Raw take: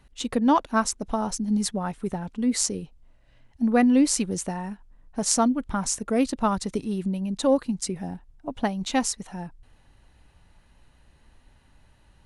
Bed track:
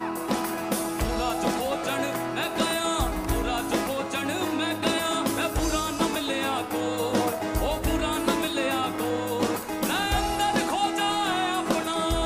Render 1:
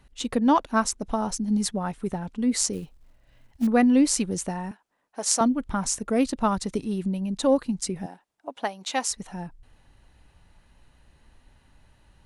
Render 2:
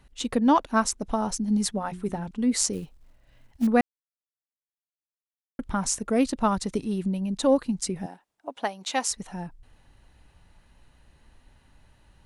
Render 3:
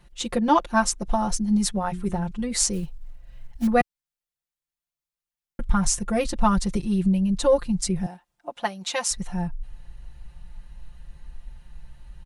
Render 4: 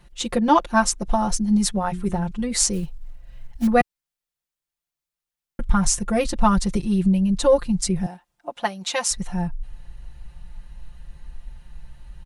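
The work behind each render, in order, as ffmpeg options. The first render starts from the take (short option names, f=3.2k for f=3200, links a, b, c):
-filter_complex "[0:a]asettb=1/sr,asplit=3[a][b][c];[a]atrim=end=2.734[d];[b]atrim=start=2.73:end=3.67,asetpts=PTS-STARTPTS,afade=t=in:d=0.004:c=qsin,afade=t=out:st=0.936:d=0.004:c=qsin,acrusher=bits=6:mode=log:mix=0:aa=0.000001[e];[c]atrim=start=3.666[f];[d][e]acrossfade=d=0.004:c1=hsin:c2=qsin[g];[g][f]acrossfade=d=0.004:c1=qsin:c2=hsin,asettb=1/sr,asplit=3[h][i][j];[h]atrim=end=4.714[k];[i]atrim=start=4.71:end=5.41,asetpts=PTS-STARTPTS,afade=t=in:d=0.004:c=qsin,afade=t=out:st=0.696:d=0.004:c=qsin,highpass=460[l];[j]atrim=start=5.406[m];[k][l]acrossfade=d=0.004:c1=hsin:c2=qsin[n];[n][m]acrossfade=d=0.004:c1=qsin:c2=hsin,asettb=1/sr,asplit=3[o][p][q];[o]atrim=end=8.064[r];[p]atrim=start=8.06:end=9.11,asetpts=PTS-STARTPTS,afade=t=in:d=0.004:c=qsin,afade=t=out:st=1.046:d=0.004:c=qsin,highpass=470[s];[q]atrim=start=9.106[t];[r][s]acrossfade=d=0.004:c1=hsin:c2=qsin[u];[u][t]acrossfade=d=0.004:c1=qsin:c2=hsin"
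-filter_complex "[0:a]asettb=1/sr,asplit=3[a][b][c];[a]atrim=end=1.724[d];[b]atrim=start=1.72:end=2.31,asetpts=PTS-STARTPTS,afade=t=in:d=0.004:c=qsin,afade=t=out:st=0.586:d=0.004:c=qsin,bandreject=f=60:t=h:w=6,bandreject=f=120:t=h:w=6,bandreject=f=180:t=h:w=6,bandreject=f=240:t=h:w=6,bandreject=f=300:t=h:w=6,bandreject=f=360:t=h:w=6[e];[c]atrim=start=2.306[f];[d][e]acrossfade=d=0.004:c1=hsin:c2=qsin[g];[g][f]acrossfade=d=0.004:c1=qsin:c2=hsin,asplit=3[h][i][j];[h]atrim=end=3.81,asetpts=PTS-STARTPTS,afade=t=out:st=3.806:d=0.004:c=hsin[k];[i]atrim=start=3.81:end=5.59,asetpts=PTS-STARTPTS,volume=0[l];[j]atrim=start=5.59,asetpts=PTS-STARTPTS,afade=t=in:d=0.004:c=hsin[m];[k][l][m]concat=n=3:v=0:a=1"
-af "aecho=1:1:5.7:0.94,asubboost=boost=5:cutoff=120"
-af "volume=2.5dB"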